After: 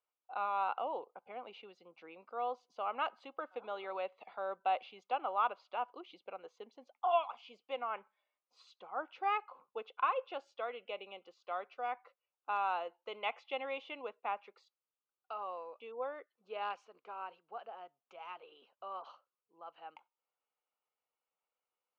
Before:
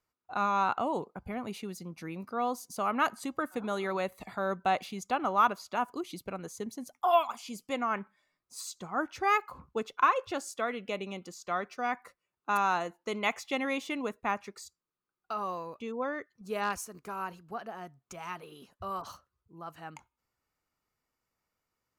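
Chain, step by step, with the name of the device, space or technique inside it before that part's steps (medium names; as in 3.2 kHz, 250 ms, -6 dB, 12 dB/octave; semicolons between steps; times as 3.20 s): high-pass 370 Hz 6 dB/octave; phone earpiece (cabinet simulation 430–3400 Hz, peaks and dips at 510 Hz +7 dB, 790 Hz +5 dB, 1.8 kHz -9 dB, 2.9 kHz +5 dB); trim -7.5 dB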